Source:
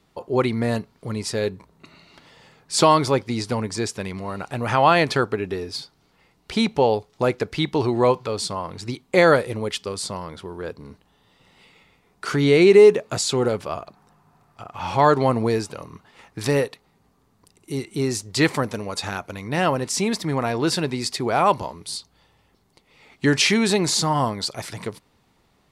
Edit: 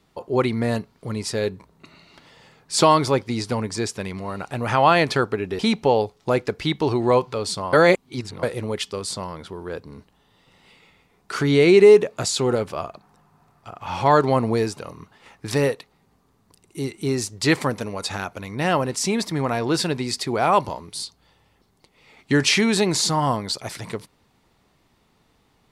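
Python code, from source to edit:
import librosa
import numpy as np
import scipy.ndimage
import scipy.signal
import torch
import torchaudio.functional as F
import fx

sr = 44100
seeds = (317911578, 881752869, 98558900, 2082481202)

y = fx.edit(x, sr, fx.cut(start_s=5.59, length_s=0.93),
    fx.reverse_span(start_s=8.66, length_s=0.7), tone=tone)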